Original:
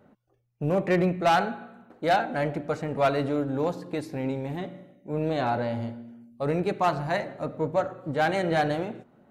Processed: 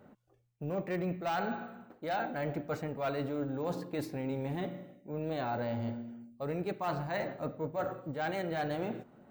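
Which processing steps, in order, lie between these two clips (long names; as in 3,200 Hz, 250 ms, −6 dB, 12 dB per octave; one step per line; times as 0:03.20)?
reversed playback
downward compressor, threshold −32 dBFS, peak gain reduction 13 dB
reversed playback
bad sample-rate conversion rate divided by 2×, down none, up hold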